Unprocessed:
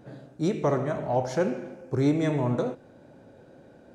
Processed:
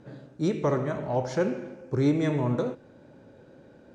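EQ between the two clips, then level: LPF 7500 Hz 12 dB/oct; bell 710 Hz -7.5 dB 0.24 oct; 0.0 dB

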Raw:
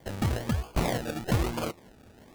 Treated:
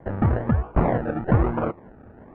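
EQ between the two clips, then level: LPF 1600 Hz 24 dB/oct; +7.5 dB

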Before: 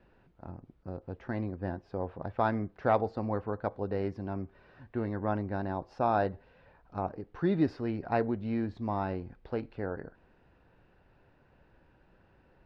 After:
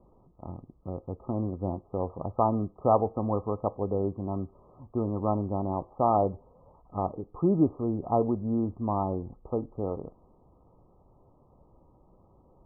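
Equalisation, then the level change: brick-wall FIR low-pass 1300 Hz; +4.0 dB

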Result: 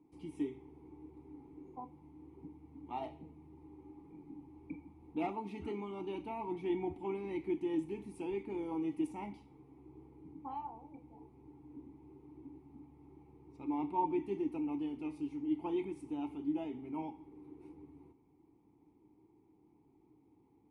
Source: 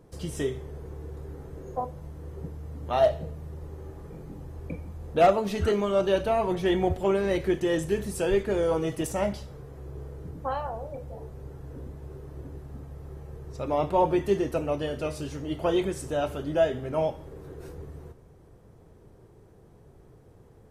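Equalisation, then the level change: vowel filter u; low shelf 110 Hz +6 dB; bell 9800 Hz +13.5 dB 0.39 oct; 0.0 dB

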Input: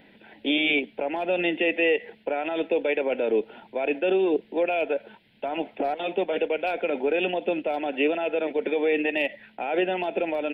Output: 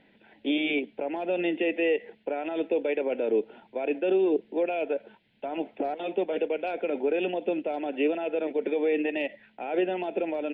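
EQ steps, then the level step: dynamic EQ 340 Hz, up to +6 dB, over -38 dBFS, Q 0.81; air absorption 57 m; -6.5 dB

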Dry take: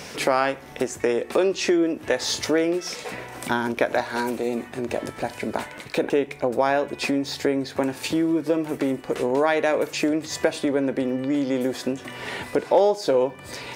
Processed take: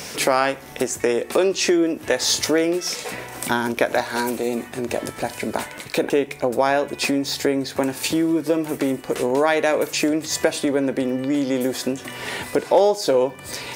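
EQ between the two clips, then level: high shelf 5900 Hz +10 dB; +2.0 dB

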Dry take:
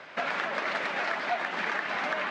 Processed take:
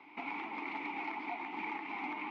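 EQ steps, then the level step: vowel filter u; +5.5 dB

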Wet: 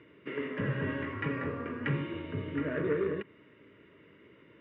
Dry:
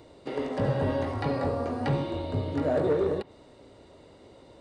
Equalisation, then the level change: speaker cabinet 220–3100 Hz, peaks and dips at 250 Hz -8 dB, 360 Hz -5 dB, 540 Hz -10 dB, 890 Hz -7 dB, 1300 Hz -5 dB; fixed phaser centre 1800 Hz, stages 4; +5.5 dB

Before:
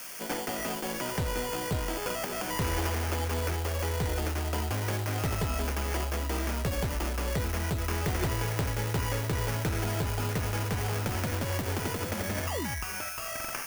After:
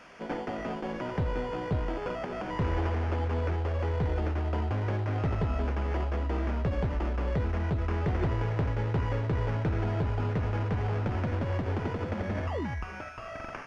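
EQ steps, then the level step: tape spacing loss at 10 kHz 38 dB; +2.5 dB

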